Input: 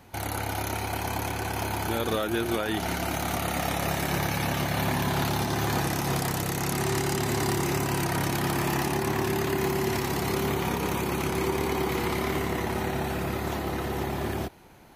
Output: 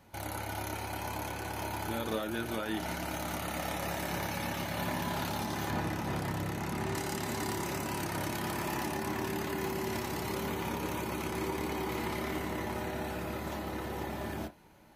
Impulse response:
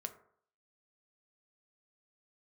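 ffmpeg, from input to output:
-filter_complex "[0:a]asettb=1/sr,asplit=3[link_01][link_02][link_03];[link_01]atrim=end=5.704[link_04];[link_02]atrim=start=5.7:end=6.95,asetpts=PTS-STARTPTS,afade=type=in:duration=0.004:curve=qsin,afade=type=out:start_time=1.246:duration=0.004:curve=qsin,bass=frequency=250:gain=4,treble=frequency=4000:gain=-8[link_05];[link_03]atrim=start=6.946[link_06];[link_04][link_05]acrossfade=duration=0.004:curve1=hsin:curve2=qsin[link_07];[link_07][link_06]acrossfade=duration=0.004:curve1=qsin:curve2=hsin[link_08];[1:a]atrim=start_sample=2205,atrim=end_sample=3969,asetrate=61740,aresample=44100[link_09];[link_08][link_09]afir=irnorm=-1:irlink=0,volume=-1.5dB"

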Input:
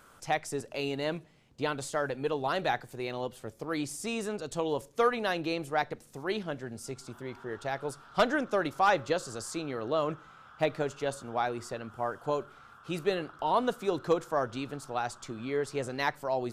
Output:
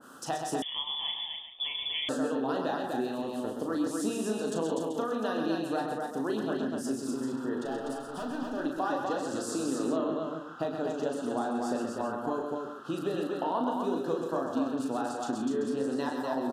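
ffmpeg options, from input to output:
ffmpeg -i in.wav -filter_complex "[0:a]highpass=200,equalizer=frequency=260:width_type=o:width=0.39:gain=13.5,acompressor=threshold=-35dB:ratio=6,asettb=1/sr,asplit=3[link_01][link_02][link_03];[link_01]atrim=end=7.634[link_04];[link_02]atrim=start=7.63:end=8.6,asetpts=PTS-STARTPTS,afade=type=in:duration=0.004:curve=qsin,afade=type=out:start_time=0.966:duration=0.004:curve=qsin,asoftclip=type=hard:threshold=-39dB[link_05];[link_03]atrim=start=8.596[link_06];[link_04][link_05]acrossfade=duration=0.004:curve1=hsin:curve2=qsin[link_07];[link_07][link_06]acrossfade=duration=0.004:curve1=qsin:curve2=hsin,asuperstop=centerf=2200:order=4:qfactor=2.6,asplit=2[link_08][link_09];[link_09]adelay=37,volume=-5dB[link_10];[link_08][link_10]amix=inputs=2:normalize=0,aecho=1:1:103|128|247|385:0.237|0.501|0.668|0.282,asettb=1/sr,asplit=3[link_11][link_12][link_13];[link_11]atrim=end=0.624[link_14];[link_12]atrim=start=0.62:end=2.09,asetpts=PTS-STARTPTS,afade=type=in:duration=0.004:curve=qsin,afade=type=out:start_time=1.466:duration=0.004:curve=qsin,lowpass=frequency=3100:width_type=q:width=0.5098,lowpass=frequency=3100:width_type=q:width=0.6013,lowpass=frequency=3100:width_type=q:width=0.9,lowpass=frequency=3100:width_type=q:width=2.563,afreqshift=-3700[link_15];[link_13]atrim=start=2.086[link_16];[link_14][link_15]acrossfade=duration=0.004:curve1=hsin:curve2=qsin[link_17];[link_17][link_16]acrossfade=duration=0.004:curve1=qsin:curve2=hsin,adynamicequalizer=threshold=0.00224:dfrequency=1600:dqfactor=0.7:tfrequency=1600:tqfactor=0.7:attack=5:release=100:ratio=0.375:range=2:mode=cutabove:tftype=highshelf,volume=4.5dB" out.wav

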